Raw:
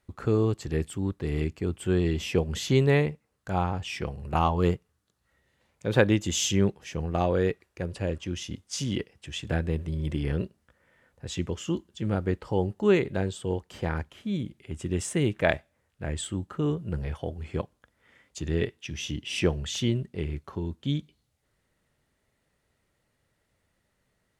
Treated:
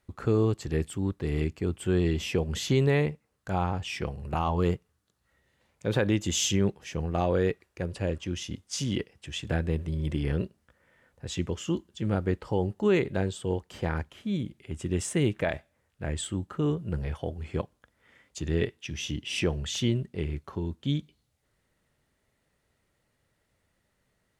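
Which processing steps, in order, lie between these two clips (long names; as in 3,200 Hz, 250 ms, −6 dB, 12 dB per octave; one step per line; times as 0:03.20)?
brickwall limiter −14.5 dBFS, peak gain reduction 9 dB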